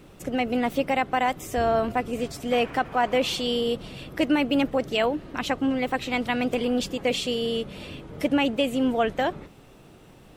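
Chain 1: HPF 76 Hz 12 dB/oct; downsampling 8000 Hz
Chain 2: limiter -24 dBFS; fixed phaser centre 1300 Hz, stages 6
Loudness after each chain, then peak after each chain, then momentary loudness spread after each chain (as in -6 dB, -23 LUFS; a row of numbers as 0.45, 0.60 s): -25.5, -37.5 LUFS; -11.5, -24.5 dBFS; 7, 6 LU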